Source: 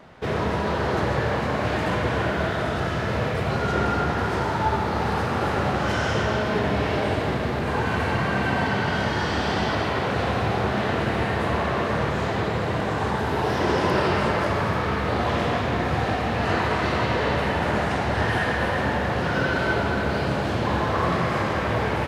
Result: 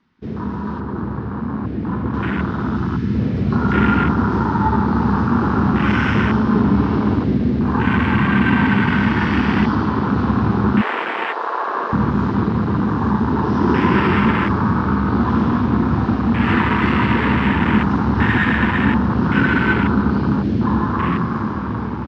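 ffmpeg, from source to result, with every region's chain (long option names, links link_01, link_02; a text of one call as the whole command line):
ffmpeg -i in.wav -filter_complex "[0:a]asettb=1/sr,asplit=3[link_01][link_02][link_03];[link_01]atrim=end=0.804[link_04];[link_02]atrim=start=0.8:end=2.14,asetpts=PTS-STARTPTS,afade=type=in:duration=0.004:curve=qsin,afade=type=out:start_time=1.336:duration=0.004:curve=qsin,lowpass=7900,highshelf=frequency=2600:gain=-10[link_05];[link_03]atrim=start=2.136[link_06];[link_04][link_05]acrossfade=duration=0.004:curve1=hsin:curve2=qsin[link_07];[link_07][link_06]acrossfade=duration=0.004:curve1=qsin:curve2=hsin,asettb=1/sr,asplit=3[link_08][link_09][link_10];[link_08]atrim=end=10.814[link_11];[link_09]atrim=start=10.81:end=11.93,asetpts=PTS-STARTPTS,afade=type=in:duration=0.004:curve=qsin,afade=type=out:start_time=1.116:duration=0.004:curve=qsin,highpass=frequency=430:width=0.5412,highpass=frequency=430:width=1.3066,equalizer=frequency=620:width_type=o:width=0.7:gain=8[link_12];[link_10]atrim=start=11.926[link_13];[link_11][link_12]acrossfade=duration=0.004:curve1=hsin:curve2=qsin[link_14];[link_14][link_13]acrossfade=duration=0.004:curve1=qsin:curve2=hsin,firequalizer=gain_entry='entry(150,0);entry(220,9);entry(620,-19);entry(930,0);entry(5400,4);entry(10000,-22)':delay=0.05:min_phase=1,afwtdn=0.0562,dynaudnorm=framelen=690:gausssize=7:maxgain=11.5dB,volume=-1dB" out.wav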